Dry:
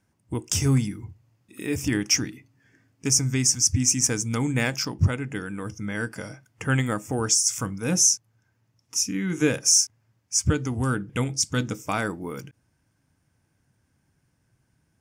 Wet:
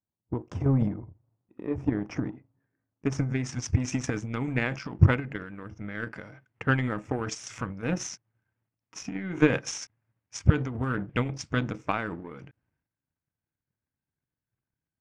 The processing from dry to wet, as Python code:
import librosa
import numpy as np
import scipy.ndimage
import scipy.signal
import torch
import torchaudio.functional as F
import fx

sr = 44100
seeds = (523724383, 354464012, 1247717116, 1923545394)

y = fx.transient(x, sr, attack_db=6, sustain_db=10)
y = fx.power_curve(y, sr, exponent=1.4)
y = fx.filter_sweep_lowpass(y, sr, from_hz=930.0, to_hz=2300.0, start_s=2.51, end_s=3.69, q=0.99)